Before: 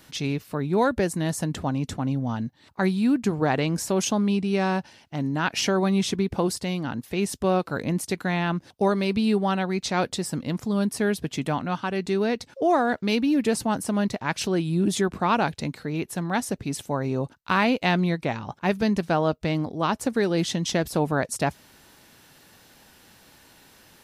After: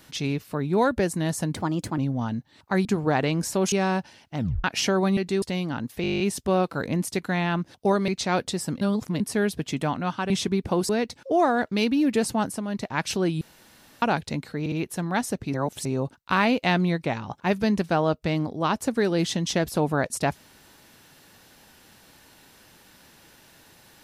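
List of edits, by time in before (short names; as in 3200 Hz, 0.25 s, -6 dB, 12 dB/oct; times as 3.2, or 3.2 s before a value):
1.54–2.06 speed 118%
2.93–3.2 cut
4.07–4.52 cut
5.18 tape stop 0.26 s
5.97–6.56 swap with 11.95–12.2
7.16 stutter 0.02 s, 10 plays
9.04–9.73 cut
10.46–10.85 reverse
13.74–14.22 dip -8 dB, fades 0.24 s
14.72–15.33 room tone
15.91 stutter 0.06 s, 3 plays
16.73–17.04 reverse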